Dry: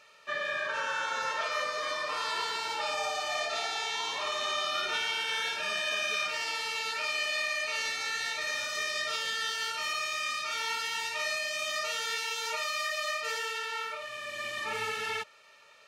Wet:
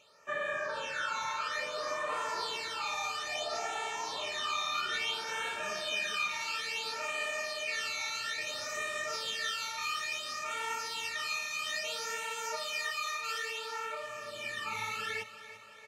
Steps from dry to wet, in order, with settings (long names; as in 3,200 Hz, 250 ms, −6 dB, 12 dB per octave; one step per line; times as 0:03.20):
all-pass phaser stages 12, 0.59 Hz, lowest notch 510–4,800 Hz
on a send: repeating echo 340 ms, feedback 58%, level −14 dB